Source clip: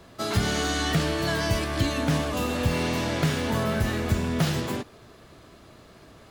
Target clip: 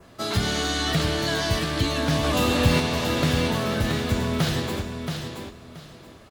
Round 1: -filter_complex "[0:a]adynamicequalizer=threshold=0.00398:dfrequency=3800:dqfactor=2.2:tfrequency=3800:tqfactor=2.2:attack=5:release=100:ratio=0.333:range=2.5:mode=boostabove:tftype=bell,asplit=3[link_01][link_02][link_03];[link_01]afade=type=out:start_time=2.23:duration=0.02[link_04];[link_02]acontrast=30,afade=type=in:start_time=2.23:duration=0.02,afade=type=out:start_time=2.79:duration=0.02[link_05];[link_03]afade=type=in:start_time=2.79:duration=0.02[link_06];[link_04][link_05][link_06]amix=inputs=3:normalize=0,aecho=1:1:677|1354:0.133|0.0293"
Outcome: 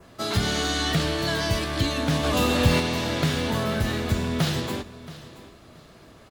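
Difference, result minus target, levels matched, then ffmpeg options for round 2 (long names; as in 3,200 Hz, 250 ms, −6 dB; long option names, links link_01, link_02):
echo-to-direct −11 dB
-filter_complex "[0:a]adynamicequalizer=threshold=0.00398:dfrequency=3800:dqfactor=2.2:tfrequency=3800:tqfactor=2.2:attack=5:release=100:ratio=0.333:range=2.5:mode=boostabove:tftype=bell,asplit=3[link_01][link_02][link_03];[link_01]afade=type=out:start_time=2.23:duration=0.02[link_04];[link_02]acontrast=30,afade=type=in:start_time=2.23:duration=0.02,afade=type=out:start_time=2.79:duration=0.02[link_05];[link_03]afade=type=in:start_time=2.79:duration=0.02[link_06];[link_04][link_05][link_06]amix=inputs=3:normalize=0,aecho=1:1:677|1354|2031:0.473|0.104|0.0229"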